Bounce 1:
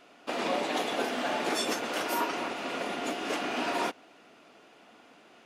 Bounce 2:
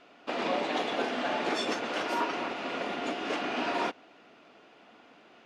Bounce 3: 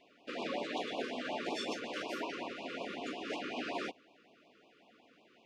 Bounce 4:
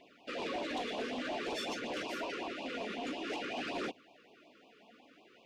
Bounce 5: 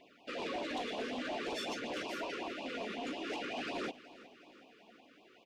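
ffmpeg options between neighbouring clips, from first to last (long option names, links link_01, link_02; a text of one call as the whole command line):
ffmpeg -i in.wav -af "lowpass=4800" out.wav
ffmpeg -i in.wav -af "afftfilt=real='re*(1-between(b*sr/1024,740*pow(1700/740,0.5+0.5*sin(2*PI*5.4*pts/sr))/1.41,740*pow(1700/740,0.5+0.5*sin(2*PI*5.4*pts/sr))*1.41))':imag='im*(1-between(b*sr/1024,740*pow(1700/740,0.5+0.5*sin(2*PI*5.4*pts/sr))/1.41,740*pow(1700/740,0.5+0.5*sin(2*PI*5.4*pts/sr))*1.41))':win_size=1024:overlap=0.75,volume=-6.5dB" out.wav
ffmpeg -i in.wav -af "aphaser=in_gain=1:out_gain=1:delay=4.8:decay=0.34:speed=0.52:type=triangular,asoftclip=type=tanh:threshold=-34.5dB,volume=2.5dB" out.wav
ffmpeg -i in.wav -af "aecho=1:1:369|738|1107|1476|1845:0.126|0.0692|0.0381|0.0209|0.0115,volume=-1dB" out.wav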